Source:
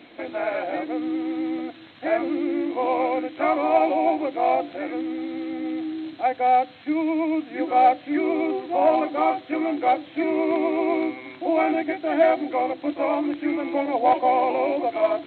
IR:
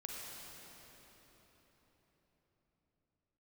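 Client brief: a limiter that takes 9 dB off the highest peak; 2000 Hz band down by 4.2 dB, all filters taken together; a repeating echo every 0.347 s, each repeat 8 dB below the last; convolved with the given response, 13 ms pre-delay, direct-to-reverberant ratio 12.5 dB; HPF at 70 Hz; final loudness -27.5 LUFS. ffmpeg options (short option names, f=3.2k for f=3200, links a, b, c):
-filter_complex "[0:a]highpass=70,equalizer=f=2k:t=o:g=-5,alimiter=limit=-16.5dB:level=0:latency=1,aecho=1:1:347|694|1041|1388|1735:0.398|0.159|0.0637|0.0255|0.0102,asplit=2[a][b];[1:a]atrim=start_sample=2205,adelay=13[c];[b][c]afir=irnorm=-1:irlink=0,volume=-11.5dB[d];[a][d]amix=inputs=2:normalize=0,volume=-2.5dB"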